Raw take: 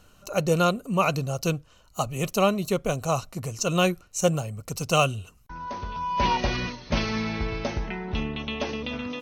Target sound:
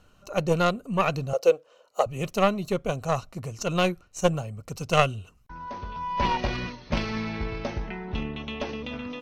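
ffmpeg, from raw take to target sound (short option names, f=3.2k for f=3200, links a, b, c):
-filter_complex "[0:a]aeval=exprs='0.447*(cos(1*acos(clip(val(0)/0.447,-1,1)))-cos(1*PI/2))+0.1*(cos(2*acos(clip(val(0)/0.447,-1,1)))-cos(2*PI/2))+0.0631*(cos(3*acos(clip(val(0)/0.447,-1,1)))-cos(3*PI/2))':c=same,asettb=1/sr,asplit=3[a][b][c];[a]atrim=end=1.334[d];[b]atrim=start=1.33:end=2.06,asetpts=PTS-STARTPTS,afade=t=in:d=0.004:c=qsin,afade=t=out:st=0.726:d=0.004:c=qsin,highpass=f=500:t=q:w=4.9[e];[c]atrim=start=2.056[f];[d][e]acrossfade=d=0.004:c1=hsin:c2=qsin[g];[g][f]acrossfade=d=0.004:c1=qsin:c2=hsin,highshelf=f=6.1k:g=-10.5,volume=2.5dB"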